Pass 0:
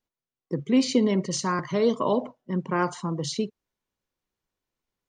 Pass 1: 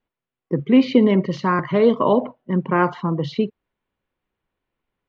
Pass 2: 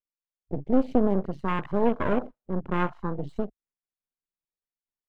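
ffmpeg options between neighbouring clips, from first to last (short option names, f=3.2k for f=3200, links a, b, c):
-af "lowpass=f=3.1k:w=0.5412,lowpass=f=3.1k:w=1.3066,volume=7dB"
-af "aeval=exprs='max(val(0),0)':c=same,afwtdn=0.0282,volume=-4.5dB"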